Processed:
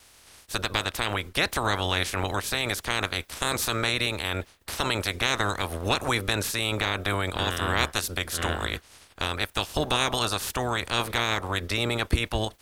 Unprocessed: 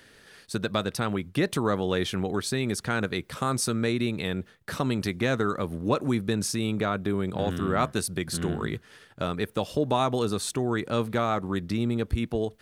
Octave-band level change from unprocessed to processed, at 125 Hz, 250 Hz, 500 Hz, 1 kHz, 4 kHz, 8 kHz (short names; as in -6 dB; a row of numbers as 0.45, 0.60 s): -1.5, -6.5, -3.0, +2.0, +8.5, +2.5 dB